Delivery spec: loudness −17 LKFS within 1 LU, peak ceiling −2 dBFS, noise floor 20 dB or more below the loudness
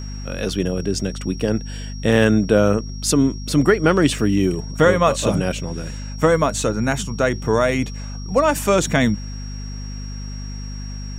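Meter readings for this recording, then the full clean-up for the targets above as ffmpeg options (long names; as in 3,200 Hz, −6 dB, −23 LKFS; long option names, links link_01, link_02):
mains hum 50 Hz; hum harmonics up to 250 Hz; level of the hum −27 dBFS; interfering tone 5,600 Hz; level of the tone −39 dBFS; integrated loudness −19.5 LKFS; sample peak −1.0 dBFS; target loudness −17.0 LKFS
→ -af "bandreject=frequency=50:width_type=h:width=6,bandreject=frequency=100:width_type=h:width=6,bandreject=frequency=150:width_type=h:width=6,bandreject=frequency=200:width_type=h:width=6,bandreject=frequency=250:width_type=h:width=6"
-af "bandreject=frequency=5600:width=30"
-af "volume=2.5dB,alimiter=limit=-2dB:level=0:latency=1"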